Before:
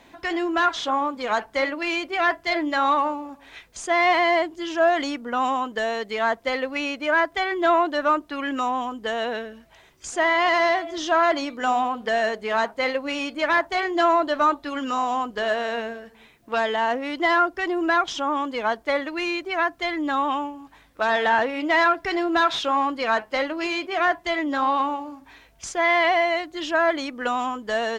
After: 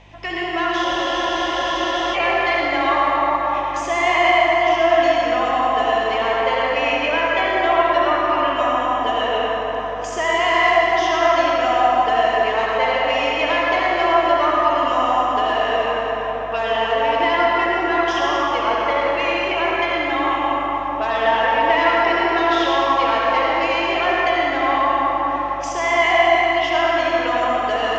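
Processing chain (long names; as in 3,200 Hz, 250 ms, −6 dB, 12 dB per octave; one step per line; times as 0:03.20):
in parallel at +2 dB: downward compressor, threshold −30 dBFS, peak gain reduction 14.5 dB
on the sum: loudspeaker in its box 430–6,000 Hz, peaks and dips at 1,500 Hz −8 dB, 2,800 Hz +5 dB, 4,100 Hz −8 dB
mains hum 50 Hz, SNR 23 dB
convolution reverb RT60 5.4 s, pre-delay 58 ms, DRR −6 dB
frozen spectrum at 0:00.87, 1.27 s
level −3 dB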